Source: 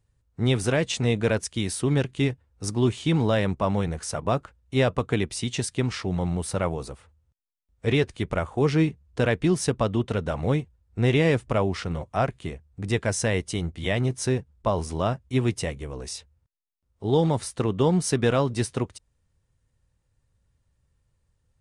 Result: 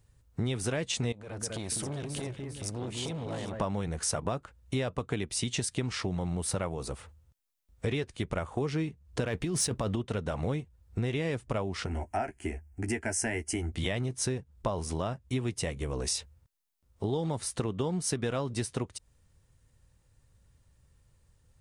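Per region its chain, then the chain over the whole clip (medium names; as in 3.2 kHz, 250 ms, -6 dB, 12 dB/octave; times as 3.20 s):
1.12–3.60 s: compression 5:1, threshold -36 dBFS + echo whose repeats swap between lows and highs 200 ms, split 2 kHz, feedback 61%, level -5.5 dB + transformer saturation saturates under 690 Hz
9.27–9.96 s: compressor with a negative ratio -26 dBFS + waveshaping leveller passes 1
11.86–13.72 s: static phaser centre 760 Hz, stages 8 + doubling 13 ms -8.5 dB
whole clip: compression 6:1, threshold -35 dBFS; treble shelf 6.2 kHz +4.5 dB; trim +5.5 dB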